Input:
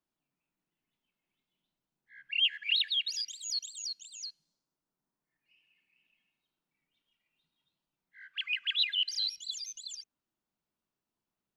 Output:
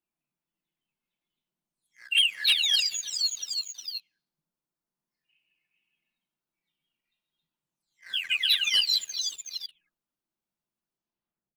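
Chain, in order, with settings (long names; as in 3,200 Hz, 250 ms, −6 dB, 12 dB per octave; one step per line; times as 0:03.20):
every frequency bin delayed by itself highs early, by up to 591 ms
leveller curve on the samples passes 2
level +2 dB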